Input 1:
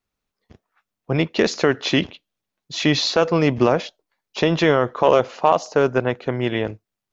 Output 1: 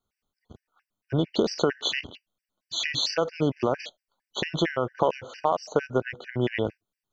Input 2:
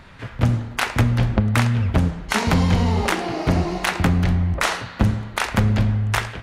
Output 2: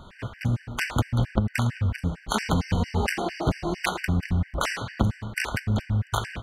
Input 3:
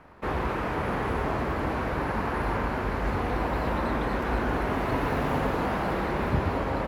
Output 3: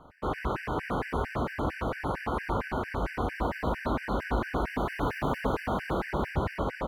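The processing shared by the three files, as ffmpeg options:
ffmpeg -i in.wav -af "acompressor=threshold=-18dB:ratio=6,afftfilt=real='re*gt(sin(2*PI*4.4*pts/sr)*(1-2*mod(floor(b*sr/1024/1500),2)),0)':imag='im*gt(sin(2*PI*4.4*pts/sr)*(1-2*mod(floor(b*sr/1024/1500),2)),0)':win_size=1024:overlap=0.75" out.wav

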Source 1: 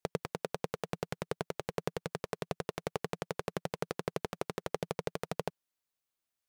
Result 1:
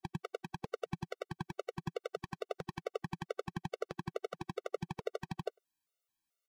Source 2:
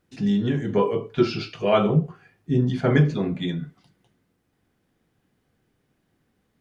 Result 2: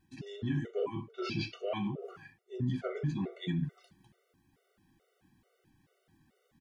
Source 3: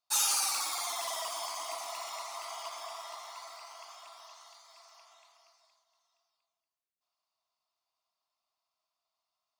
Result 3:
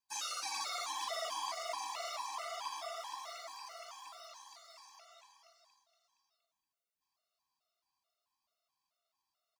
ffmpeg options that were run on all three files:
ffmpeg -i in.wav -filter_complex "[0:a]areverse,acompressor=threshold=-33dB:ratio=5,areverse,asplit=2[link_01][link_02];[link_02]adelay=100,highpass=300,lowpass=3400,asoftclip=type=hard:threshold=-31dB,volume=-30dB[link_03];[link_01][link_03]amix=inputs=2:normalize=0,acrossover=split=6300[link_04][link_05];[link_05]acompressor=threshold=-57dB:ratio=4:attack=1:release=60[link_06];[link_04][link_06]amix=inputs=2:normalize=0,afftfilt=real='re*gt(sin(2*PI*2.3*pts/sr)*(1-2*mod(floor(b*sr/1024/380),2)),0)':imag='im*gt(sin(2*PI*2.3*pts/sr)*(1-2*mod(floor(b*sr/1024/380),2)),0)':win_size=1024:overlap=0.75,volume=3dB" out.wav

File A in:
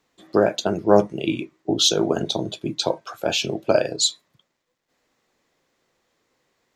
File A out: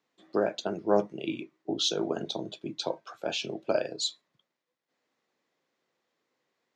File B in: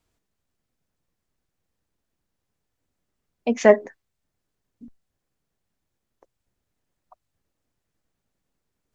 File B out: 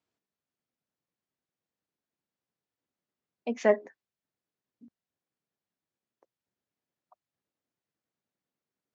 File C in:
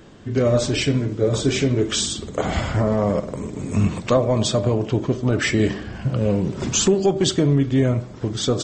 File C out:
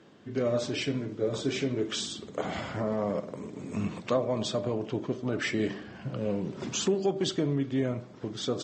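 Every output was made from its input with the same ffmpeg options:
ffmpeg -i in.wav -af "highpass=160,lowpass=6000,volume=-9dB" out.wav

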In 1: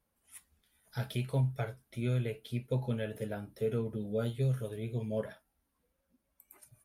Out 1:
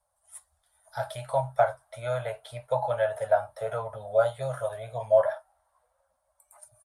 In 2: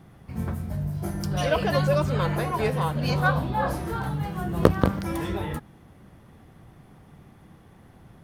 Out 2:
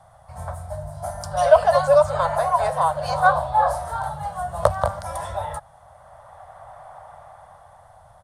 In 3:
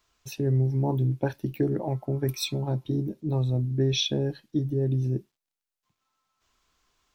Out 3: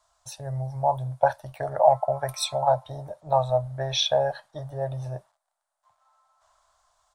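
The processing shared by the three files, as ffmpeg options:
ffmpeg -i in.wav -filter_complex "[0:a]firequalizer=gain_entry='entry(100,0);entry(250,-26);entry(370,-23);entry(600,14);entry(2500,-8);entry(3600,1);entry(6000,3);entry(8900,12);entry(14000,-9)':delay=0.05:min_phase=1,acrossover=split=440|2700[link_01][link_02][link_03];[link_02]dynaudnorm=framelen=220:gausssize=11:maxgain=12dB[link_04];[link_01][link_04][link_03]amix=inputs=3:normalize=0,volume=-2dB" out.wav

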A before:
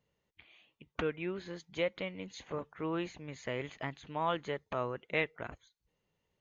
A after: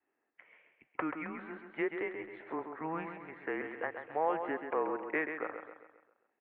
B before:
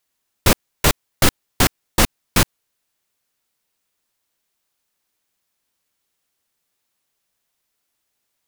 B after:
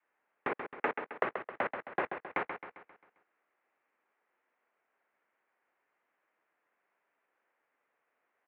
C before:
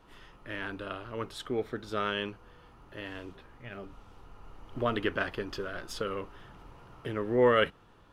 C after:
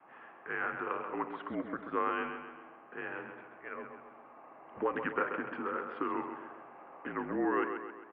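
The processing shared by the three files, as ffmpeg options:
ffmpeg -i in.wav -filter_complex "[0:a]adynamicequalizer=threshold=0.00891:dfrequency=650:dqfactor=3.9:tfrequency=650:tqfactor=3.9:attack=5:release=100:ratio=0.375:range=2:mode=boostabove:tftype=bell,acompressor=threshold=-29dB:ratio=8,asplit=2[link_01][link_02];[link_02]aecho=0:1:133|266|399|532|665|798:0.422|0.202|0.0972|0.0466|0.0224|0.0107[link_03];[link_01][link_03]amix=inputs=2:normalize=0,highpass=frequency=510:width_type=q:width=0.5412,highpass=frequency=510:width_type=q:width=1.307,lowpass=frequency=2300:width_type=q:width=0.5176,lowpass=frequency=2300:width_type=q:width=0.7071,lowpass=frequency=2300:width_type=q:width=1.932,afreqshift=-160,volume=4dB" out.wav

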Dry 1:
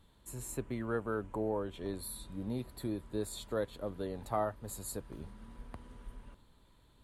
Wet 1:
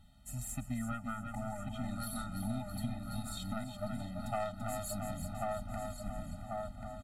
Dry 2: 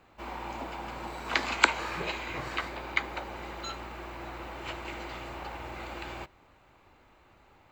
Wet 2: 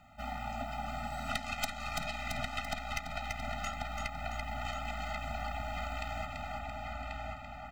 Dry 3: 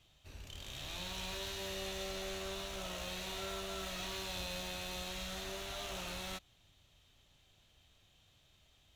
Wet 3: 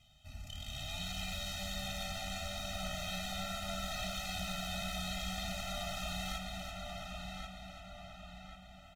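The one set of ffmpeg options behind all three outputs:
ffmpeg -i in.wav -filter_complex "[0:a]aeval=exprs='0.188*(abs(mod(val(0)/0.188+3,4)-2)-1)':channel_layout=same,asplit=2[link_01][link_02];[link_02]adelay=1087,lowpass=frequency=3300:poles=1,volume=-4dB,asplit=2[link_03][link_04];[link_04]adelay=1087,lowpass=frequency=3300:poles=1,volume=0.52,asplit=2[link_05][link_06];[link_06]adelay=1087,lowpass=frequency=3300:poles=1,volume=0.52,asplit=2[link_07][link_08];[link_08]adelay=1087,lowpass=frequency=3300:poles=1,volume=0.52,asplit=2[link_09][link_10];[link_10]adelay=1087,lowpass=frequency=3300:poles=1,volume=0.52,asplit=2[link_11][link_12];[link_12]adelay=1087,lowpass=frequency=3300:poles=1,volume=0.52,asplit=2[link_13][link_14];[link_14]adelay=1087,lowpass=frequency=3300:poles=1,volume=0.52[link_15];[link_03][link_05][link_07][link_09][link_11][link_13][link_15]amix=inputs=7:normalize=0[link_16];[link_01][link_16]amix=inputs=2:normalize=0,aeval=exprs='0.2*(cos(1*acos(clip(val(0)/0.2,-1,1)))-cos(1*PI/2))+0.0282*(cos(4*acos(clip(val(0)/0.2,-1,1)))-cos(4*PI/2))+0.00631*(cos(6*acos(clip(val(0)/0.2,-1,1)))-cos(6*PI/2))+0.0126*(cos(7*acos(clip(val(0)/0.2,-1,1)))-cos(7*PI/2))+0.00398*(cos(8*acos(clip(val(0)/0.2,-1,1)))-cos(8*PI/2))':channel_layout=same,asplit=2[link_17][link_18];[link_18]aecho=0:1:336|672|1008|1344|1680|2016:0.376|0.195|0.102|0.0528|0.0275|0.0143[link_19];[link_17][link_19]amix=inputs=2:normalize=0,acompressor=threshold=-40dB:ratio=4,afftfilt=real='re*eq(mod(floor(b*sr/1024/300),2),0)':imag='im*eq(mod(floor(b*sr/1024/300),2),0)':win_size=1024:overlap=0.75,volume=9dB" out.wav

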